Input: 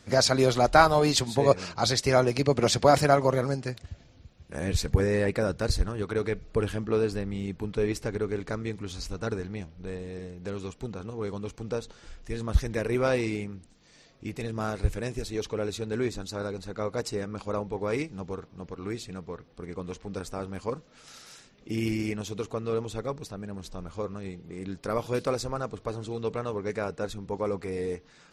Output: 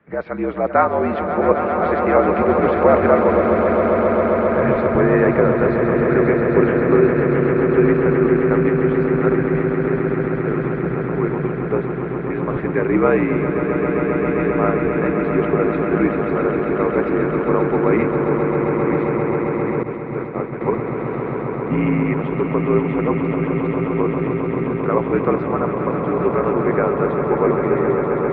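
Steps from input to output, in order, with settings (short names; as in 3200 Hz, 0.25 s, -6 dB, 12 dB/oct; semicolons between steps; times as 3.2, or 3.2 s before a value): mistuned SSB -57 Hz 180–2300 Hz; AGC gain up to 13 dB; on a send: swelling echo 0.133 s, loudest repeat 8, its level -9 dB; 19.83–20.61 on the sum: expander -14 dBFS; gain -1.5 dB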